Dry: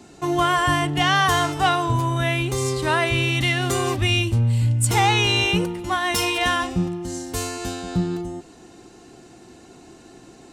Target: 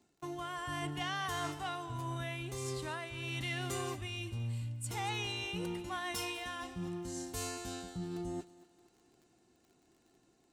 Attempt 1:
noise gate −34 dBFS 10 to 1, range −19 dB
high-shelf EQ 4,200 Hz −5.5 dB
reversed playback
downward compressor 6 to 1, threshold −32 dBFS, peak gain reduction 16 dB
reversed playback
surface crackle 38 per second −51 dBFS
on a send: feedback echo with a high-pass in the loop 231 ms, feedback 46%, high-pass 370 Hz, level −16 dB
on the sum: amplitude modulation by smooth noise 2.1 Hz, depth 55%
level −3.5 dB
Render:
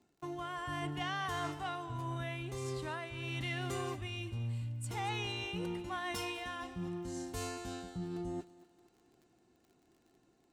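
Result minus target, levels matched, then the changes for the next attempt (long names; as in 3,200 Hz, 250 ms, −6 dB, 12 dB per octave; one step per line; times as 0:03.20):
8,000 Hz band −4.5 dB
change: high-shelf EQ 4,200 Hz +2.5 dB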